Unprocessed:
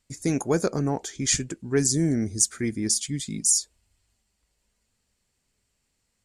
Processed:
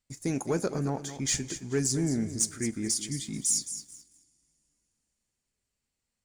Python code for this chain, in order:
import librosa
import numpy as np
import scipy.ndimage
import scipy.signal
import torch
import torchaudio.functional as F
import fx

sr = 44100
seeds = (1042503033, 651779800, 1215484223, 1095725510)

y = fx.echo_feedback(x, sr, ms=217, feedback_pct=27, wet_db=-12)
y = fx.rev_double_slope(y, sr, seeds[0], early_s=0.26, late_s=3.3, knee_db=-19, drr_db=15.5)
y = fx.leveller(y, sr, passes=1)
y = y * 10.0 ** (-8.5 / 20.0)